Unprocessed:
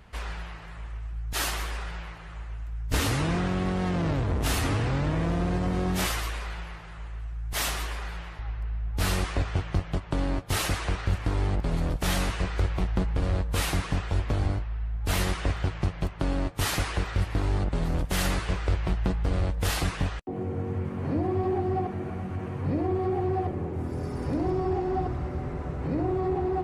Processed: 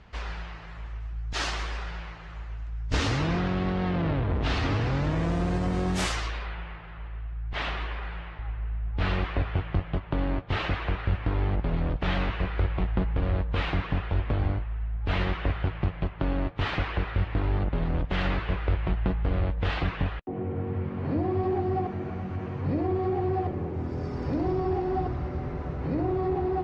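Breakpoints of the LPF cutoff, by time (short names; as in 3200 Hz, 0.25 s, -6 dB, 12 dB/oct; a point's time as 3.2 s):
LPF 24 dB/oct
3.08 s 6100 Hz
4.25 s 3500 Hz
5.37 s 9000 Hz
6.03 s 9000 Hz
6.55 s 3300 Hz
20.45 s 3300 Hz
21.46 s 5600 Hz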